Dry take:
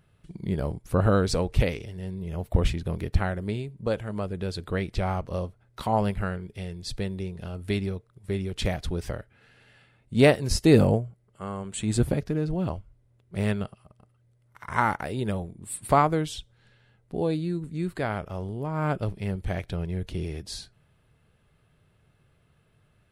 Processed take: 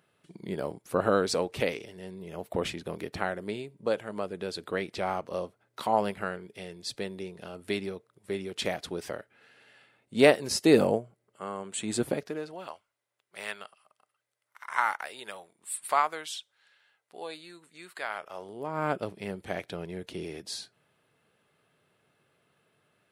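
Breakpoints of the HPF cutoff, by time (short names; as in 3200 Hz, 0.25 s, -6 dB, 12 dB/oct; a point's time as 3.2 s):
12.11 s 290 Hz
12.71 s 1000 Hz
18.09 s 1000 Hz
18.78 s 270 Hz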